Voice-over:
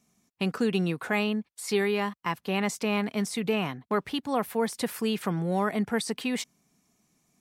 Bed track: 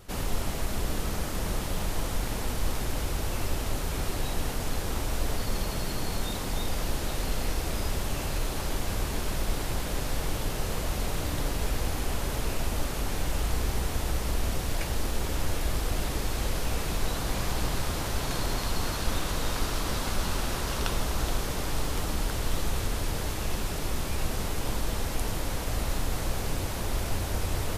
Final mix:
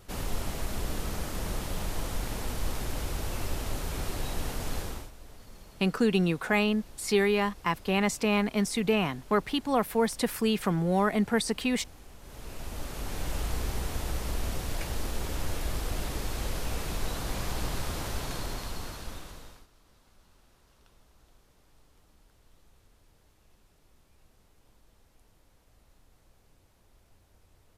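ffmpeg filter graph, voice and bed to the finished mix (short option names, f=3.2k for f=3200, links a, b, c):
-filter_complex "[0:a]adelay=5400,volume=1.5dB[a];[1:a]volume=14dB,afade=t=out:st=4.79:d=0.32:silence=0.133352,afade=t=in:st=12.2:d=1.12:silence=0.141254,afade=t=out:st=18.07:d=1.6:silence=0.0334965[b];[a][b]amix=inputs=2:normalize=0"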